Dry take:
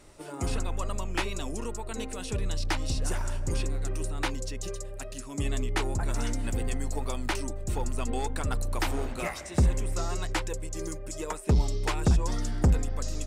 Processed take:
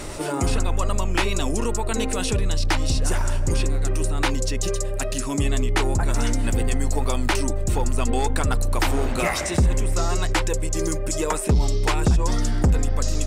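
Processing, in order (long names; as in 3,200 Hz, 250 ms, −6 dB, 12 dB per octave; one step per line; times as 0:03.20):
envelope flattener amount 50%
level +3 dB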